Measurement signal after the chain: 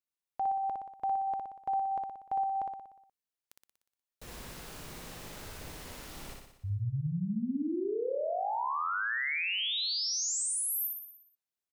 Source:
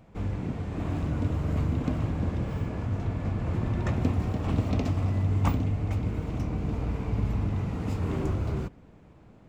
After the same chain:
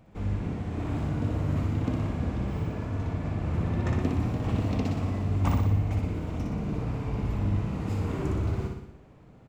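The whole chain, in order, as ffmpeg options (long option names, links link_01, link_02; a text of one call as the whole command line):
ffmpeg -i in.wav -af "aecho=1:1:60|120|180|240|300|360|420|480:0.668|0.394|0.233|0.137|0.081|0.0478|0.0282|0.0166,volume=-2dB" out.wav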